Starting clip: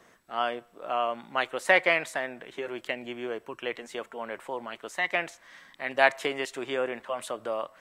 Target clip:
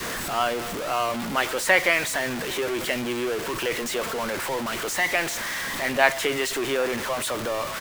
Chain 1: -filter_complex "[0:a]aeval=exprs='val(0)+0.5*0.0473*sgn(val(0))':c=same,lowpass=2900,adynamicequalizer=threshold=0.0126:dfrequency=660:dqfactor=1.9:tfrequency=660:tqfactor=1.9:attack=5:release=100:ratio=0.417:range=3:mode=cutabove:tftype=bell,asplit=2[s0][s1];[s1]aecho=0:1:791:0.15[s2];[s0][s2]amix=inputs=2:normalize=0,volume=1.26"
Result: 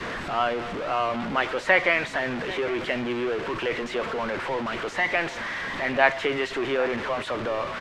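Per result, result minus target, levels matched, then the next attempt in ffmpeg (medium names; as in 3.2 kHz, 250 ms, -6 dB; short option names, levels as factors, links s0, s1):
echo-to-direct +7 dB; 4 kHz band -3.5 dB
-filter_complex "[0:a]aeval=exprs='val(0)+0.5*0.0473*sgn(val(0))':c=same,lowpass=2900,adynamicequalizer=threshold=0.0126:dfrequency=660:dqfactor=1.9:tfrequency=660:tqfactor=1.9:attack=5:release=100:ratio=0.417:range=3:mode=cutabove:tftype=bell,asplit=2[s0][s1];[s1]aecho=0:1:791:0.0668[s2];[s0][s2]amix=inputs=2:normalize=0,volume=1.26"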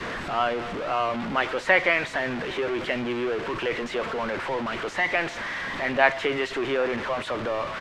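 4 kHz band -3.5 dB
-filter_complex "[0:a]aeval=exprs='val(0)+0.5*0.0473*sgn(val(0))':c=same,adynamicequalizer=threshold=0.0126:dfrequency=660:dqfactor=1.9:tfrequency=660:tqfactor=1.9:attack=5:release=100:ratio=0.417:range=3:mode=cutabove:tftype=bell,asplit=2[s0][s1];[s1]aecho=0:1:791:0.0668[s2];[s0][s2]amix=inputs=2:normalize=0,volume=1.26"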